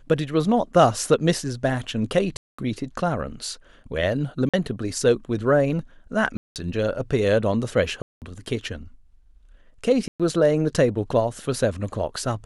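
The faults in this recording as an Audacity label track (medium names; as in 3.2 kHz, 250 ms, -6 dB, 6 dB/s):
2.370000	2.580000	dropout 215 ms
4.490000	4.540000	dropout 46 ms
6.370000	6.560000	dropout 188 ms
8.020000	8.220000	dropout 198 ms
10.080000	10.200000	dropout 116 ms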